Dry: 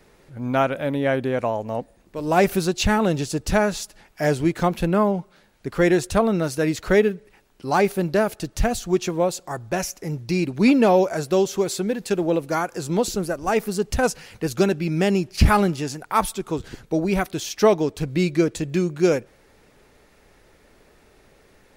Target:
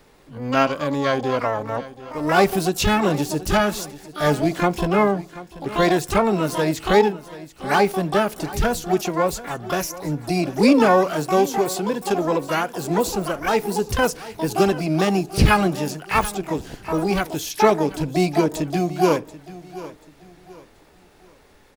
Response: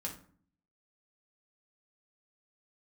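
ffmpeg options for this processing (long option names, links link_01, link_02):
-filter_complex "[0:a]asplit=2[link_01][link_02];[link_02]asetrate=88200,aresample=44100,atempo=0.5,volume=-5dB[link_03];[link_01][link_03]amix=inputs=2:normalize=0,aecho=1:1:735|1470|2205:0.141|0.048|0.0163,asplit=2[link_04][link_05];[1:a]atrim=start_sample=2205,asetrate=70560,aresample=44100[link_06];[link_05][link_06]afir=irnorm=-1:irlink=0,volume=-11dB[link_07];[link_04][link_07]amix=inputs=2:normalize=0,volume=-1dB"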